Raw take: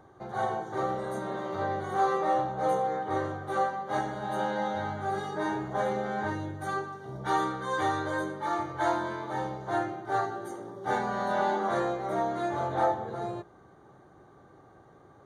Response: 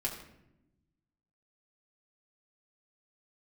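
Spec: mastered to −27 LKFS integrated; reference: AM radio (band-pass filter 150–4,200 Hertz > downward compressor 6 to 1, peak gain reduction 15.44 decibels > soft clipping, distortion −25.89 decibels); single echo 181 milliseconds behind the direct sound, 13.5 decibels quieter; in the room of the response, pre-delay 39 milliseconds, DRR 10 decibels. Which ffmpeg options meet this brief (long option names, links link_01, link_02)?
-filter_complex "[0:a]aecho=1:1:181:0.211,asplit=2[link_01][link_02];[1:a]atrim=start_sample=2205,adelay=39[link_03];[link_02][link_03]afir=irnorm=-1:irlink=0,volume=-13dB[link_04];[link_01][link_04]amix=inputs=2:normalize=0,highpass=150,lowpass=4200,acompressor=threshold=-38dB:ratio=6,asoftclip=threshold=-29.5dB,volume=14.5dB"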